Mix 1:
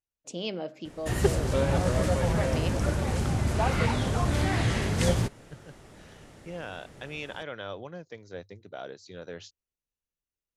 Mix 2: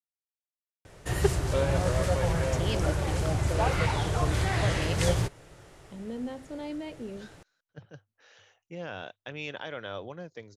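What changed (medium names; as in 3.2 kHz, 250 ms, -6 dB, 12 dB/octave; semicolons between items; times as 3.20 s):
speech: entry +2.25 s; background: add peaking EQ 230 Hz -13.5 dB 0.36 oct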